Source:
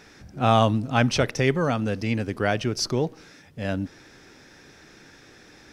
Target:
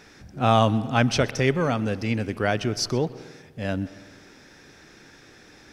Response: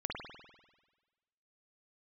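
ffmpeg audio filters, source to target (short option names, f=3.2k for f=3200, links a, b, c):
-filter_complex "[0:a]asplit=2[a][b];[1:a]atrim=start_sample=2205,adelay=126[c];[b][c]afir=irnorm=-1:irlink=0,volume=-20dB[d];[a][d]amix=inputs=2:normalize=0"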